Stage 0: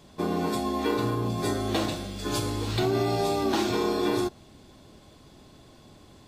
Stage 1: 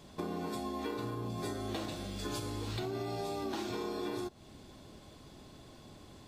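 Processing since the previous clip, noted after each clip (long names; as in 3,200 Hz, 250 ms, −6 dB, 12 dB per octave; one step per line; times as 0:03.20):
downward compressor 4 to 1, threshold −35 dBFS, peak gain reduction 11.5 dB
level −1.5 dB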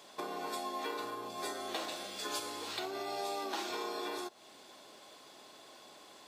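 high-pass filter 570 Hz 12 dB per octave
level +4 dB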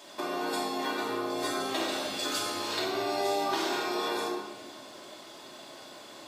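rectangular room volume 1,500 cubic metres, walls mixed, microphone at 2.7 metres
level +3.5 dB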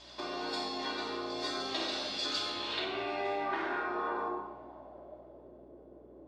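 mains hum 60 Hz, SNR 26 dB
low-pass filter sweep 4,700 Hz → 430 Hz, 0:02.25–0:05.70
level −6 dB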